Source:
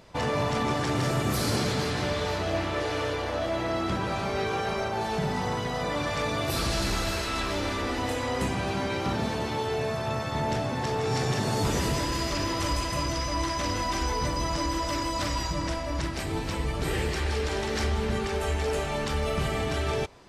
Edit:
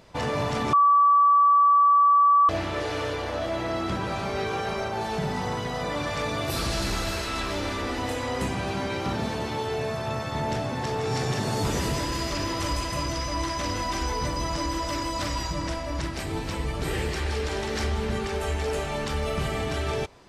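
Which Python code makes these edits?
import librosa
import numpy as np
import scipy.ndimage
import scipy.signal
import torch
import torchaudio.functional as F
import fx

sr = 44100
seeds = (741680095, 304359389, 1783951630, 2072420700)

y = fx.edit(x, sr, fx.bleep(start_s=0.73, length_s=1.76, hz=1150.0, db=-14.5), tone=tone)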